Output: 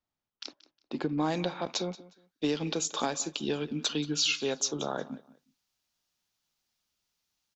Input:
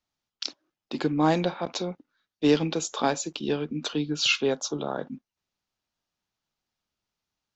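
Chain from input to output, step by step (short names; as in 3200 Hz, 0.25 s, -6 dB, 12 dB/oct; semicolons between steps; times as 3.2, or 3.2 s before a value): high shelf 2600 Hz -9.5 dB, from 1.18 s +5 dB, from 3.61 s +11 dB; compressor 6:1, threshold -23 dBFS, peak gain reduction 10.5 dB; feedback echo 0.18 s, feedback 24%, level -19 dB; gain -2.5 dB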